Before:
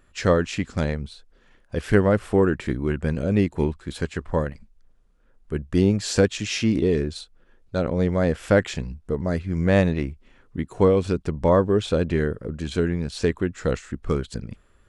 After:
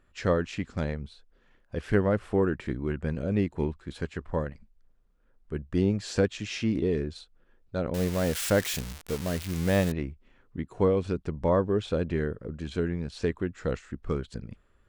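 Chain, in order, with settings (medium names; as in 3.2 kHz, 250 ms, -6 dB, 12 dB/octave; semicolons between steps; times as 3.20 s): 7.94–9.92 s: zero-crossing glitches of -12.5 dBFS; treble shelf 6.2 kHz -9.5 dB; trim -6 dB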